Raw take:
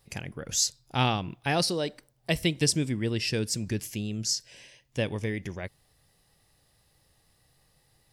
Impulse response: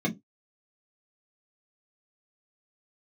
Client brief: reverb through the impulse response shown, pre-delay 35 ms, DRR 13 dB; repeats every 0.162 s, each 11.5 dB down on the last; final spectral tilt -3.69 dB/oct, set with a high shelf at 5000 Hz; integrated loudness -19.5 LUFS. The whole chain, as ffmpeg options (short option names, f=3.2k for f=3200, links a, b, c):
-filter_complex "[0:a]highshelf=f=5k:g=3.5,aecho=1:1:162|324|486:0.266|0.0718|0.0194,asplit=2[a][b];[1:a]atrim=start_sample=2205,adelay=35[c];[b][c]afir=irnorm=-1:irlink=0,volume=-21.5dB[d];[a][d]amix=inputs=2:normalize=0,volume=7.5dB"